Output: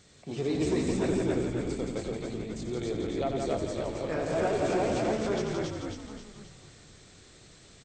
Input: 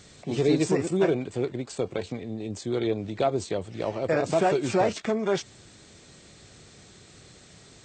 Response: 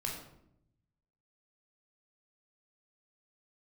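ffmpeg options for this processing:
-filter_complex "[0:a]asplit=2[link_01][link_02];[link_02]aecho=0:1:90.38|169.1|282.8:0.398|0.562|0.631[link_03];[link_01][link_03]amix=inputs=2:normalize=0,asoftclip=type=tanh:threshold=-10.5dB,asplit=2[link_04][link_05];[link_05]asplit=6[link_06][link_07][link_08][link_09][link_10][link_11];[link_06]adelay=267,afreqshift=-62,volume=-3.5dB[link_12];[link_07]adelay=534,afreqshift=-124,volume=-9.7dB[link_13];[link_08]adelay=801,afreqshift=-186,volume=-15.9dB[link_14];[link_09]adelay=1068,afreqshift=-248,volume=-22.1dB[link_15];[link_10]adelay=1335,afreqshift=-310,volume=-28.3dB[link_16];[link_11]adelay=1602,afreqshift=-372,volume=-34.5dB[link_17];[link_12][link_13][link_14][link_15][link_16][link_17]amix=inputs=6:normalize=0[link_18];[link_04][link_18]amix=inputs=2:normalize=0,volume=-7.5dB"

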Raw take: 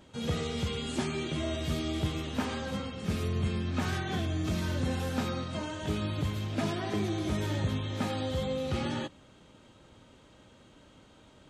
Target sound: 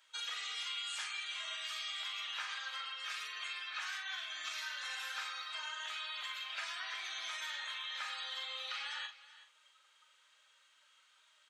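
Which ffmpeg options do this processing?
ffmpeg -i in.wav -filter_complex "[0:a]afftdn=noise_reduction=16:noise_floor=-49,highpass=frequency=1300:width=0.5412,highpass=frequency=1300:width=1.3066,acompressor=threshold=-52dB:ratio=6,asplit=2[link_01][link_02];[link_02]adelay=42,volume=-7dB[link_03];[link_01][link_03]amix=inputs=2:normalize=0,aecho=1:1:376:0.141,volume=11.5dB" out.wav

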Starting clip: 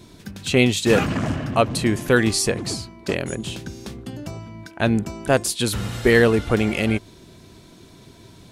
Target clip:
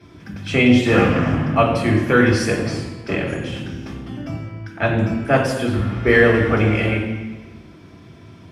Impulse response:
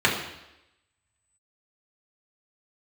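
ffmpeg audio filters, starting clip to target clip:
-filter_complex "[0:a]asplit=3[link_01][link_02][link_03];[link_01]afade=type=out:start_time=5.51:duration=0.02[link_04];[link_02]lowpass=frequency=1800:poles=1,afade=type=in:start_time=5.51:duration=0.02,afade=type=out:start_time=6.05:duration=0.02[link_05];[link_03]afade=type=in:start_time=6.05:duration=0.02[link_06];[link_04][link_05][link_06]amix=inputs=3:normalize=0[link_07];[1:a]atrim=start_sample=2205,asetrate=32634,aresample=44100[link_08];[link_07][link_08]afir=irnorm=-1:irlink=0,volume=-16.5dB"

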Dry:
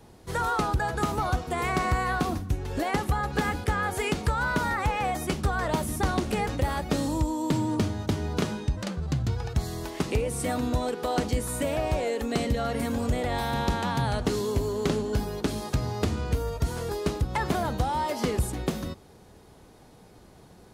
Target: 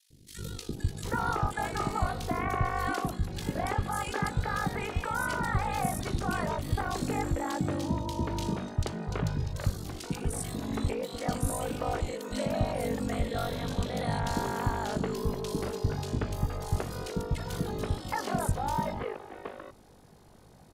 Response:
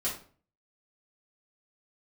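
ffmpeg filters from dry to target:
-filter_complex "[0:a]aeval=exprs='val(0)*sin(2*PI*25*n/s)':channel_layout=same,acrossover=split=360|2600[link_01][link_02][link_03];[link_01]adelay=100[link_04];[link_02]adelay=770[link_05];[link_04][link_05][link_03]amix=inputs=3:normalize=0"

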